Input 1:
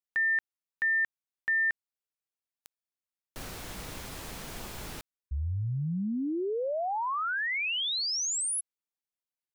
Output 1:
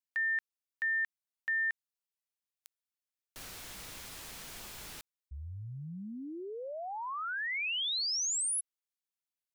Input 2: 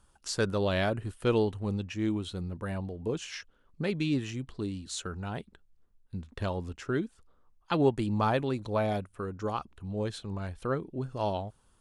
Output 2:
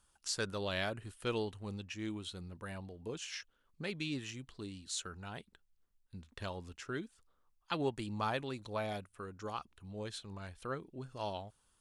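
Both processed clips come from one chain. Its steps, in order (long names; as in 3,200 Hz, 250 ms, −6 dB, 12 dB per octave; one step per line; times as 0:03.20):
tilt shelving filter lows −5 dB, about 1,200 Hz
level −6.5 dB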